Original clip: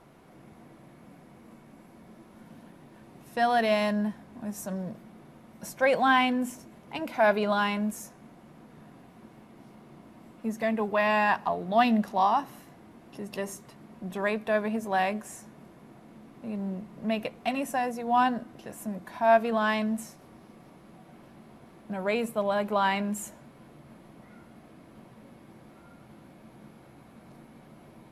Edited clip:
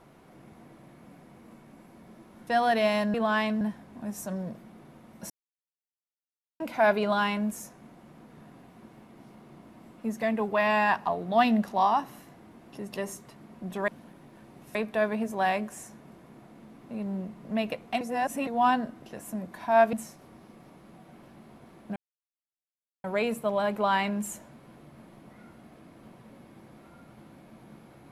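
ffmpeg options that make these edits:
-filter_complex "[0:a]asplit=12[s0][s1][s2][s3][s4][s5][s6][s7][s8][s9][s10][s11];[s0]atrim=end=2.472[s12];[s1]atrim=start=3.338:end=4.012[s13];[s2]atrim=start=19.458:end=19.932[s14];[s3]atrim=start=4.008:end=5.7,asetpts=PTS-STARTPTS,afade=t=out:st=1.688:d=0.004:c=hsin[s15];[s4]atrim=start=5.7:end=7,asetpts=PTS-STARTPTS,volume=0[s16];[s5]atrim=start=7:end=14.282,asetpts=PTS-STARTPTS,afade=t=in:d=0.004:c=hsin[s17];[s6]atrim=start=2.468:end=3.342[s18];[s7]atrim=start=14.278:end=17.542[s19];[s8]atrim=start=17.538:end=18.002,asetpts=PTS-STARTPTS,areverse[s20];[s9]atrim=start=17.998:end=19.462[s21];[s10]atrim=start=19.928:end=21.96,asetpts=PTS-STARTPTS,afade=t=out:st=2.028:d=0.004:c=hsin,apad=pad_dur=1.08[s22];[s11]atrim=start=21.96,asetpts=PTS-STARTPTS,afade=t=in:d=0.004:c=hsin[s23];[s12][s13]acrossfade=d=0.004:c1=hsin:c2=hsin[s24];[s24][s14]acrossfade=d=0.004:c1=hsin:c2=hsin[s25];[s15][s16][s17]concat=n=3:v=0:a=1[s26];[s25][s26]acrossfade=d=0.004:c1=hsin:c2=hsin[s27];[s27][s18]acrossfade=d=0.004:c1=hsin:c2=hsin[s28];[s28][s19]acrossfade=d=0.004:c1=hsin:c2=hsin[s29];[s29][s20]acrossfade=d=0.004:c1=hsin:c2=hsin[s30];[s30][s21]acrossfade=d=0.004:c1=hsin:c2=hsin[s31];[s22][s23]concat=n=2:v=0:a=1[s32];[s31][s32]acrossfade=d=0.004:c1=hsin:c2=hsin"

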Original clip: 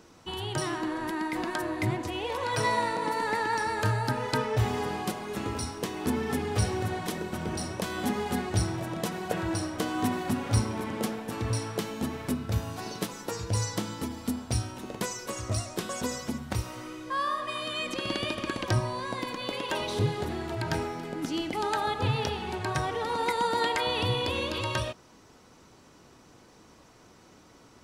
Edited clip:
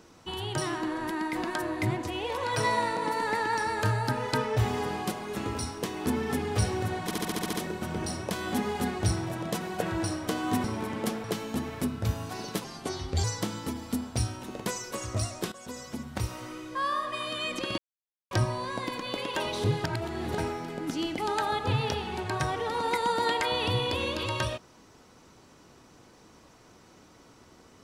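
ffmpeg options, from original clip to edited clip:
-filter_complex "[0:a]asplit=17[s0][s1][s2][s3][s4][s5][s6][s7][s8][s9][s10][s11][s12][s13][s14][s15][s16];[s0]atrim=end=7.112[s17];[s1]atrim=start=7.038:end=7.112[s18];[s2]atrim=start=7.038:end=7.112[s19];[s3]atrim=start=7.038:end=7.112[s20];[s4]atrim=start=7.038:end=7.112[s21];[s5]atrim=start=7.038:end=7.112[s22];[s6]atrim=start=7.038:end=7.112[s23];[s7]atrim=start=7.038:end=10.152[s24];[s8]atrim=start=10.608:end=11.212[s25];[s9]atrim=start=11.708:end=13.114[s26];[s10]atrim=start=13.11:end=13.59,asetpts=PTS-STARTPTS,asetrate=35280,aresample=44100[s27];[s11]atrim=start=13.586:end=15.87,asetpts=PTS-STARTPTS,afade=t=out:st=2.28:d=0.004:c=hsin:silence=0.16788[s28];[s12]atrim=start=15.87:end=18.13,asetpts=PTS-STARTPTS,afade=t=in:d=0.78:silence=0.16788,afade=t=out:st=2.256:d=0.004:c=hsin[s29];[s13]atrim=start=18.13:end=18.66,asetpts=PTS-STARTPTS,volume=0[s30];[s14]atrim=start=18.66:end=20.192,asetpts=PTS-STARTPTS,afade=t=in:d=0.004:c=hsin[s31];[s15]atrim=start=20.188:end=20.732,asetpts=PTS-STARTPTS,areverse[s32];[s16]atrim=start=20.728[s33];[s17][s18]acrossfade=d=0.004:c1=hsin:c2=hsin[s34];[s34][s19]acrossfade=d=0.004:c1=hsin:c2=hsin[s35];[s35][s20]acrossfade=d=0.004:c1=hsin:c2=hsin[s36];[s36][s21]acrossfade=d=0.004:c1=hsin:c2=hsin[s37];[s37][s22]acrossfade=d=0.004:c1=hsin:c2=hsin[s38];[s38][s23]acrossfade=d=0.004:c1=hsin:c2=hsin[s39];[s39][s24]acrossfade=d=0.004:c1=hsin:c2=hsin[s40];[s40][s25]acrossfade=d=0.004:c1=hsin:c2=hsin[s41];[s41][s26]acrossfade=d=0.004:c1=hsin:c2=hsin[s42];[s42][s27]acrossfade=d=0.004:c1=hsin:c2=hsin[s43];[s28][s29][s30][s31]concat=n=4:v=0:a=1[s44];[s43][s44]acrossfade=d=0.004:c1=hsin:c2=hsin[s45];[s45][s32]acrossfade=d=0.004:c1=hsin:c2=hsin[s46];[s46][s33]acrossfade=d=0.004:c1=hsin:c2=hsin"

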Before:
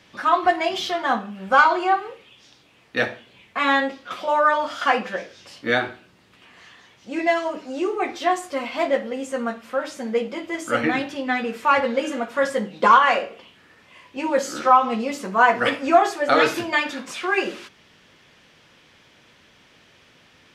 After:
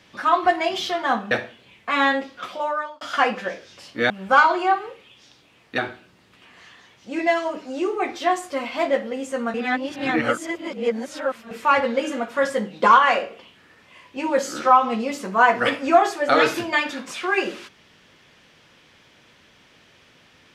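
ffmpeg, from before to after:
-filter_complex "[0:a]asplit=7[s0][s1][s2][s3][s4][s5][s6];[s0]atrim=end=1.312[s7];[s1]atrim=start=2.988:end=4.69,asetpts=PTS-STARTPTS,afade=t=out:st=1.072:d=0.63[s8];[s2]atrim=start=4.69:end=5.782,asetpts=PTS-STARTPTS,afade=t=in:d=0.004:c=hsin[s9];[s3]atrim=start=1.308:end=2.992[s10];[s4]atrim=start=5.778:end=9.542[s11];[s5]atrim=start=9.538:end=11.512,asetpts=PTS-STARTPTS,areverse[s12];[s6]atrim=start=11.508[s13];[s8][s9]concat=n=2:v=0:a=1[s14];[s7][s14]acrossfade=d=0.004:c1=hsin:c2=hsin[s15];[s15][s10]acrossfade=d=0.004:c1=hsin:c2=hsin[s16];[s16][s11]acrossfade=d=0.004:c1=hsin:c2=hsin[s17];[s17][s12]acrossfade=d=0.004:c1=hsin:c2=hsin[s18];[s18][s13]acrossfade=d=0.004:c1=hsin:c2=hsin"

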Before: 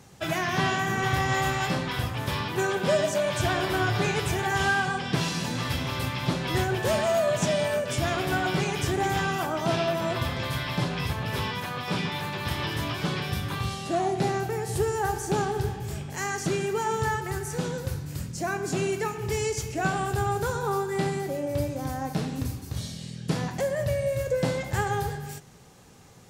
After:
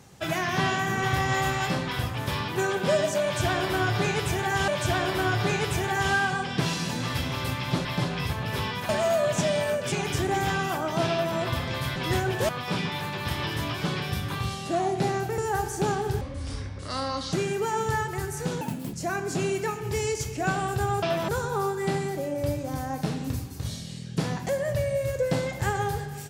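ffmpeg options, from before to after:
-filter_complex "[0:a]asplit=14[s0][s1][s2][s3][s4][s5][s6][s7][s8][s9][s10][s11][s12][s13];[s0]atrim=end=4.682[s14];[s1]atrim=start=3.228:end=6.402[s15];[s2]atrim=start=10.648:end=11.692[s16];[s3]atrim=start=6.928:end=7.962[s17];[s4]atrim=start=8.608:end=10.652[s18];[s5]atrim=start=6.398:end=6.932[s19];[s6]atrim=start=11.688:end=14.582[s20];[s7]atrim=start=14.878:end=15.714[s21];[s8]atrim=start=15.71:end=16.46,asetpts=PTS-STARTPTS,asetrate=29547,aresample=44100[s22];[s9]atrim=start=16.456:end=17.744[s23];[s10]atrim=start=17.74:end=18.31,asetpts=PTS-STARTPTS,asetrate=77175,aresample=44100[s24];[s11]atrim=start=18.306:end=20.402[s25];[s12]atrim=start=9.798:end=10.062[s26];[s13]atrim=start=20.398[s27];[s14][s15]acrossfade=d=0.004:c1=hsin:c2=hsin[s28];[s28][s16]acrossfade=d=0.004:c1=hsin:c2=hsin[s29];[s29][s17]acrossfade=d=0.004:c1=hsin:c2=hsin[s30];[s30][s18]acrossfade=d=0.004:c1=hsin:c2=hsin[s31];[s31][s19]acrossfade=d=0.004:c1=hsin:c2=hsin[s32];[s32][s20]acrossfade=d=0.004:c1=hsin:c2=hsin[s33];[s33][s21]acrossfade=d=0.004:c1=hsin:c2=hsin[s34];[s34][s22]acrossfade=d=0.004:c1=hsin:c2=hsin[s35];[s35][s23]acrossfade=d=0.004:c1=hsin:c2=hsin[s36];[s36][s24]acrossfade=d=0.004:c1=hsin:c2=hsin[s37];[s37][s25]acrossfade=d=0.004:c1=hsin:c2=hsin[s38];[s38][s26]acrossfade=d=0.004:c1=hsin:c2=hsin[s39];[s39][s27]acrossfade=d=0.004:c1=hsin:c2=hsin"

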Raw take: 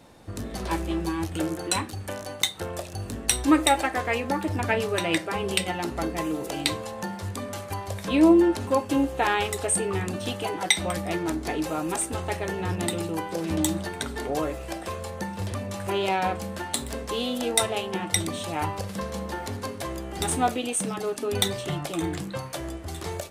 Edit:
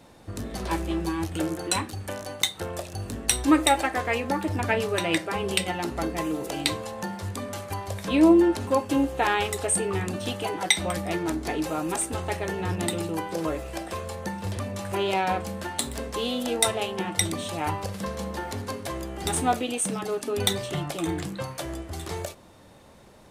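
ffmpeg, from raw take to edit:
-filter_complex "[0:a]asplit=2[s0][s1];[s0]atrim=end=13.452[s2];[s1]atrim=start=14.398[s3];[s2][s3]acrossfade=d=0.004:c1=hsin:c2=hsin"

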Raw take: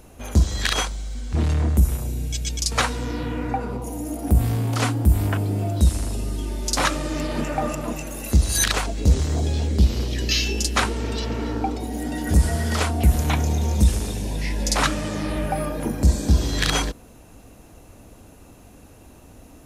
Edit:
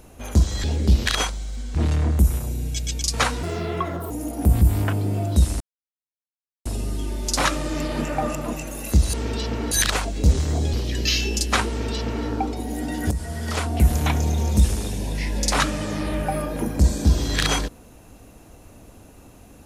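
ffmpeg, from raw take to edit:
-filter_complex "[0:a]asplit=11[s0][s1][s2][s3][s4][s5][s6][s7][s8][s9][s10];[s0]atrim=end=0.642[s11];[s1]atrim=start=9.548:end=9.972[s12];[s2]atrim=start=0.638:end=3.014[s13];[s3]atrim=start=3.01:end=3.96,asetpts=PTS-STARTPTS,asetrate=62181,aresample=44100[s14];[s4]atrim=start=3.956:end=4.472[s15];[s5]atrim=start=5.058:end=6.05,asetpts=PTS-STARTPTS,afade=t=out:st=0.988:d=0.004:c=hsin,apad=pad_dur=1.05[s16];[s6]atrim=start=6.05:end=8.532,asetpts=PTS-STARTPTS,afade=t=in:d=0.004:c=hsin[s17];[s7]atrim=start=10.918:end=11.502[s18];[s8]atrim=start=8.528:end=9.552[s19];[s9]atrim=start=9.968:end=12.35,asetpts=PTS-STARTPTS,afade=t=out:st=2.378:d=0.004:c=hsin:silence=0.237137[s20];[s10]atrim=start=12.35,asetpts=PTS-STARTPTS,afade=t=in:d=0.74:silence=0.237137[s21];[s11][s12]acrossfade=d=0.004:c1=hsin:c2=hsin[s22];[s22][s13]acrossfade=d=0.004:c1=hsin:c2=hsin[s23];[s23][s14]acrossfade=d=0.004:c1=hsin:c2=hsin[s24];[s24][s15]acrossfade=d=0.004:c1=hsin:c2=hsin[s25];[s16][s17]concat=n=2:v=0:a=1[s26];[s25][s26]acrossfade=d=0.004:c1=hsin:c2=hsin[s27];[s27][s18]acrossfade=d=0.004:c1=hsin:c2=hsin[s28];[s28][s19]acrossfade=d=0.004:c1=hsin:c2=hsin[s29];[s20][s21]concat=n=2:v=0:a=1[s30];[s29][s30]acrossfade=d=0.004:c1=hsin:c2=hsin"

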